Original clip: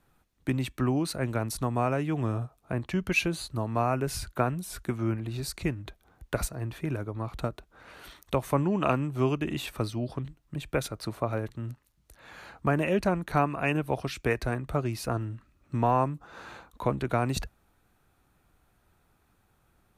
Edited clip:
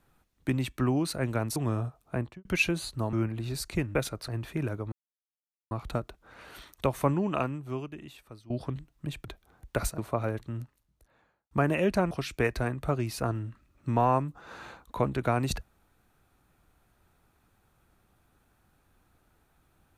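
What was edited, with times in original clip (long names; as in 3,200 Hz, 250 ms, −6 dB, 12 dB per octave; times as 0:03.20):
0:01.56–0:02.13: remove
0:02.73–0:03.02: fade out and dull
0:03.70–0:05.01: remove
0:05.83–0:06.56: swap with 0:10.74–0:11.07
0:07.20: splice in silence 0.79 s
0:08.56–0:09.99: fade out quadratic, to −18.5 dB
0:11.57–0:12.60: fade out and dull
0:13.20–0:13.97: remove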